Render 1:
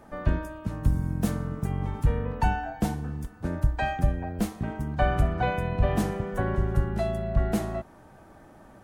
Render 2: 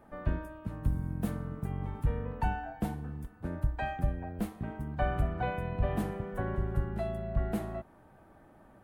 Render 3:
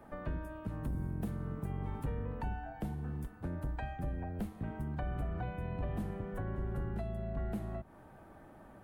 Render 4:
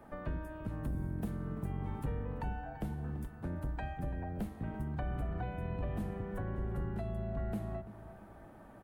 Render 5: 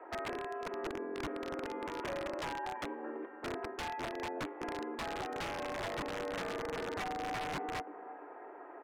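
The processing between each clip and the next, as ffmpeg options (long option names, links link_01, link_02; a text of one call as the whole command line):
ffmpeg -i in.wav -af "equalizer=frequency=6000:width=1.1:gain=-10,volume=-6.5dB" out.wav
ffmpeg -i in.wav -filter_complex "[0:a]acrossover=split=190[link_01][link_02];[link_01]asoftclip=type=tanh:threshold=-36.5dB[link_03];[link_02]acompressor=threshold=-44dB:ratio=12[link_04];[link_03][link_04]amix=inputs=2:normalize=0,volume=2.5dB" out.wav
ffmpeg -i in.wav -filter_complex "[0:a]asplit=2[link_01][link_02];[link_02]adelay=337,lowpass=frequency=2000:poles=1,volume=-13dB,asplit=2[link_03][link_04];[link_04]adelay=337,lowpass=frequency=2000:poles=1,volume=0.43,asplit=2[link_05][link_06];[link_06]adelay=337,lowpass=frequency=2000:poles=1,volume=0.43,asplit=2[link_07][link_08];[link_08]adelay=337,lowpass=frequency=2000:poles=1,volume=0.43[link_09];[link_01][link_03][link_05][link_07][link_09]amix=inputs=5:normalize=0" out.wav
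ffmpeg -i in.wav -af "highpass=frequency=250:width_type=q:width=0.5412,highpass=frequency=250:width_type=q:width=1.307,lowpass=frequency=2500:width_type=q:width=0.5176,lowpass=frequency=2500:width_type=q:width=0.7071,lowpass=frequency=2500:width_type=q:width=1.932,afreqshift=89,aeval=exprs='(mod(79.4*val(0)+1,2)-1)/79.4':channel_layout=same,aemphasis=mode=reproduction:type=50fm,volume=6.5dB" out.wav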